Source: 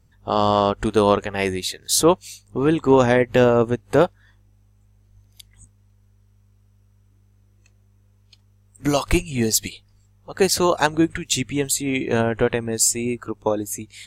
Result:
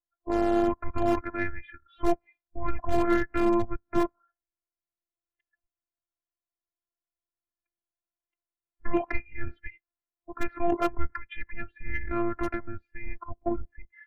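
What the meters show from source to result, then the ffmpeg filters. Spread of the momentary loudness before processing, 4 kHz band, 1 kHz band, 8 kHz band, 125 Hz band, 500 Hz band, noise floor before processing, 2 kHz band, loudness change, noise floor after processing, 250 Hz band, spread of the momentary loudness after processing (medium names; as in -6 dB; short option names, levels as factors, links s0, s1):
9 LU, -23.5 dB, -9.0 dB, under -30 dB, -14.0 dB, -12.0 dB, -57 dBFS, -9.0 dB, -9.5 dB, under -85 dBFS, -7.5 dB, 17 LU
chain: -filter_complex "[0:a]highpass=f=230:t=q:w=0.5412,highpass=f=230:t=q:w=1.307,lowpass=f=2400:t=q:w=0.5176,lowpass=f=2400:t=q:w=0.7071,lowpass=f=2400:t=q:w=1.932,afreqshift=-290,asplit=2[s0][s1];[s1]aeval=exprs='(mod(2.66*val(0)+1,2)-1)/2.66':c=same,volume=0.251[s2];[s0][s2]amix=inputs=2:normalize=0,afftdn=nr=23:nf=-43,adynamicequalizer=threshold=0.0141:dfrequency=150:dqfactor=5.9:tfrequency=150:tqfactor=5.9:attack=5:release=100:ratio=0.375:range=2:mode=boostabove:tftype=bell,acontrast=47,afftfilt=real='hypot(re,im)*cos(PI*b)':imag='0':win_size=512:overlap=0.75,volume=0.398"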